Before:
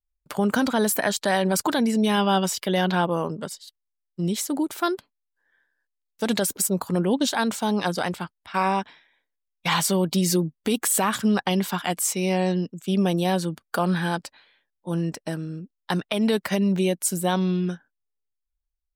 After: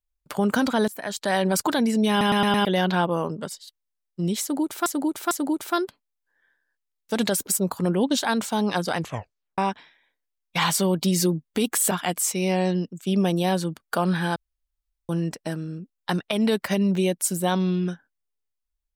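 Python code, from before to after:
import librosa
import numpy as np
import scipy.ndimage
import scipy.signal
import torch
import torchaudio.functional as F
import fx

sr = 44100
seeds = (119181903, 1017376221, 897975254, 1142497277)

y = fx.edit(x, sr, fx.fade_in_from(start_s=0.88, length_s=0.51, floor_db=-22.5),
    fx.stutter_over(start_s=2.1, slice_s=0.11, count=5),
    fx.repeat(start_s=4.41, length_s=0.45, count=3),
    fx.tape_stop(start_s=8.06, length_s=0.62),
    fx.cut(start_s=11.01, length_s=0.71),
    fx.room_tone_fill(start_s=14.17, length_s=0.73), tone=tone)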